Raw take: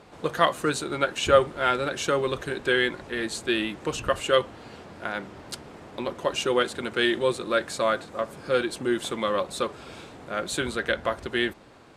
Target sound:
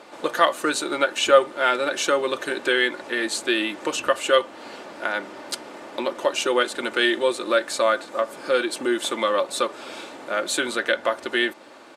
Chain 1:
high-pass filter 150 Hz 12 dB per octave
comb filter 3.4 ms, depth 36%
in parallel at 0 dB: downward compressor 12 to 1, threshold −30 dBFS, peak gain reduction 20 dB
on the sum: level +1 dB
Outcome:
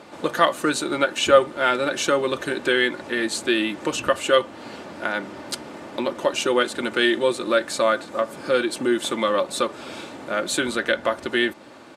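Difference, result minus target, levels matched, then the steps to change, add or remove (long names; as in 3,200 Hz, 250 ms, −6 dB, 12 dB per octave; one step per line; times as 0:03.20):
125 Hz band +10.0 dB
change: high-pass filter 340 Hz 12 dB per octave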